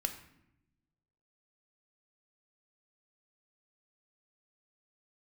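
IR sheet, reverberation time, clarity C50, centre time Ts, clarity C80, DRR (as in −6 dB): 0.85 s, 10.5 dB, 12 ms, 13.0 dB, 6.5 dB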